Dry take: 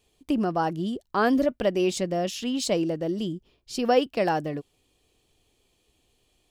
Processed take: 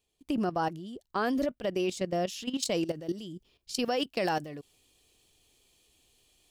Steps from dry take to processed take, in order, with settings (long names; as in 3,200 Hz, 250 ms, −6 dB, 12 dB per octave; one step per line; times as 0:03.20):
high-shelf EQ 2,400 Hz +4 dB, from 0:02.70 +9.5 dB
output level in coarse steps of 13 dB
level −2 dB